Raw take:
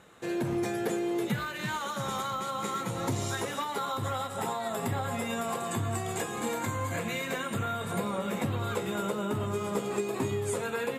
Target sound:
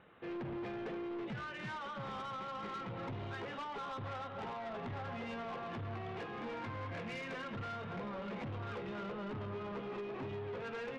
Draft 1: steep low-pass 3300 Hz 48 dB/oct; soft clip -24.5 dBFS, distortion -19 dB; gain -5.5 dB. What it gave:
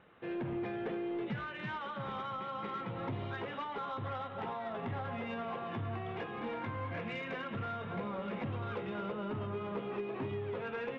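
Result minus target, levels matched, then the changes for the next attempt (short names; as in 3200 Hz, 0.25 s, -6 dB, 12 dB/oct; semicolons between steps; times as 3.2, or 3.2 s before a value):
soft clip: distortion -9 dB
change: soft clip -33 dBFS, distortion -10 dB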